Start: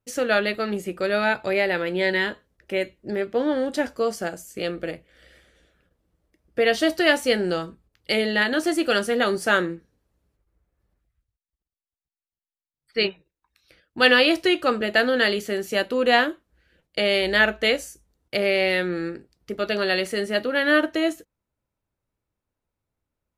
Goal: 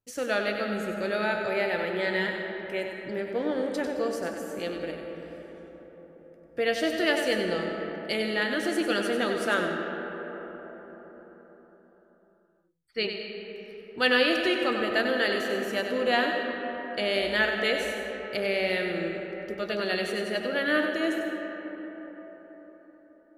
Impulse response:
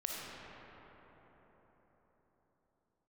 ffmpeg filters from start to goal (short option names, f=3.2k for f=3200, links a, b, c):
-filter_complex "[0:a]asplit=2[a][b];[1:a]atrim=start_sample=2205,adelay=96[c];[b][c]afir=irnorm=-1:irlink=0,volume=-5dB[d];[a][d]amix=inputs=2:normalize=0,volume=-7dB"